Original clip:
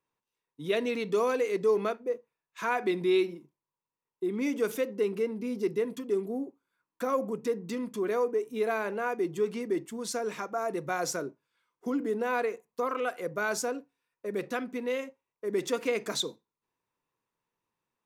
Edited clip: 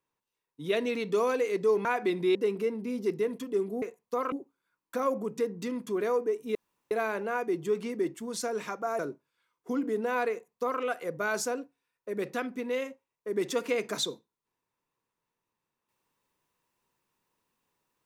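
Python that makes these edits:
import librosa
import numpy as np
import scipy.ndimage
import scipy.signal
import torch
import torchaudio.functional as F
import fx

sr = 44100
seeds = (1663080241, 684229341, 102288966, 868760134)

y = fx.edit(x, sr, fx.cut(start_s=1.85, length_s=0.81),
    fx.cut(start_s=3.16, length_s=1.76),
    fx.insert_room_tone(at_s=8.62, length_s=0.36),
    fx.cut(start_s=10.7, length_s=0.46),
    fx.duplicate(start_s=12.48, length_s=0.5, to_s=6.39), tone=tone)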